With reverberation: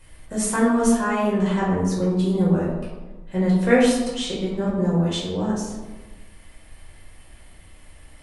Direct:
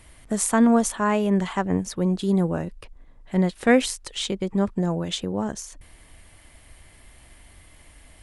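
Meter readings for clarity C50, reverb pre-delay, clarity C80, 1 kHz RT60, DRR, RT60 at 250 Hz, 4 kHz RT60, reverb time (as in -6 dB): 1.5 dB, 4 ms, 4.5 dB, 1.2 s, -6.5 dB, 1.5 s, 0.65 s, 1.2 s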